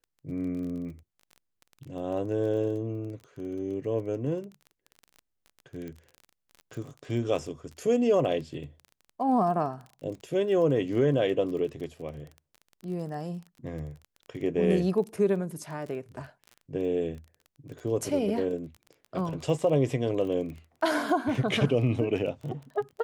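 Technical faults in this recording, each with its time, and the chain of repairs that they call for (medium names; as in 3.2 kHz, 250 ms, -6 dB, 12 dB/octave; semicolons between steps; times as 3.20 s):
crackle 22 per s -37 dBFS
5.88 s: pop -28 dBFS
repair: de-click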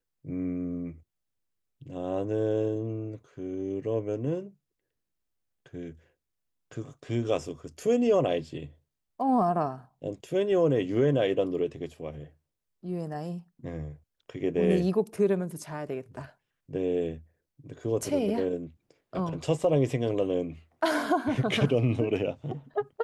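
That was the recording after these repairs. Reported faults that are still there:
nothing left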